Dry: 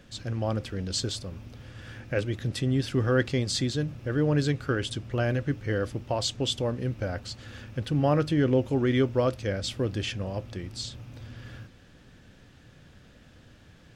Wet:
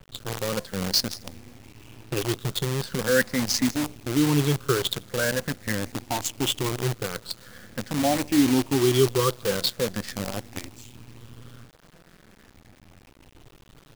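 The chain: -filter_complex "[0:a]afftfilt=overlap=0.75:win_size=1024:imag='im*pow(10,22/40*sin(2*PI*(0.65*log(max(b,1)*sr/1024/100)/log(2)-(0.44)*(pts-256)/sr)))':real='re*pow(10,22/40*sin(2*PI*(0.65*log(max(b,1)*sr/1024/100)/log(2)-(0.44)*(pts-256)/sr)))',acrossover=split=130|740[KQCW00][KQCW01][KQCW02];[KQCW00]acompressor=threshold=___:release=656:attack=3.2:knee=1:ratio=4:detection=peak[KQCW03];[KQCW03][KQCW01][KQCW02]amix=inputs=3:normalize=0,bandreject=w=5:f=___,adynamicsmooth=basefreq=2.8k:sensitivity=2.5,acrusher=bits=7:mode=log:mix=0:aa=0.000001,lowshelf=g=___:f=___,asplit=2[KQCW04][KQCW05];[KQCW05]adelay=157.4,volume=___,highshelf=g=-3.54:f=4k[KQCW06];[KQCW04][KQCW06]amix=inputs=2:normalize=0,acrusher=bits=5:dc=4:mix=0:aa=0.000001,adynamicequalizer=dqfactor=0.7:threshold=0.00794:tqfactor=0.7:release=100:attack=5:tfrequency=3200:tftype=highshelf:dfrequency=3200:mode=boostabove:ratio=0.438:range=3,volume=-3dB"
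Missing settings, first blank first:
-46dB, 640, 3, 260, -26dB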